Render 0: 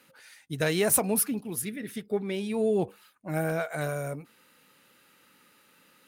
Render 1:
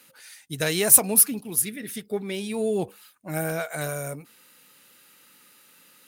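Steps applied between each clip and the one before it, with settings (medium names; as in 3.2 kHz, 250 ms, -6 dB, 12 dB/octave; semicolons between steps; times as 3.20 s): treble shelf 3.6 kHz +11 dB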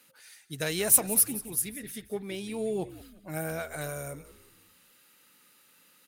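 frequency-shifting echo 178 ms, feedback 45%, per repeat -80 Hz, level -16 dB; trim -6 dB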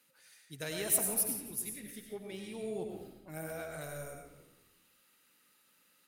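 algorithmic reverb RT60 0.79 s, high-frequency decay 0.7×, pre-delay 55 ms, DRR 2.5 dB; trim -9 dB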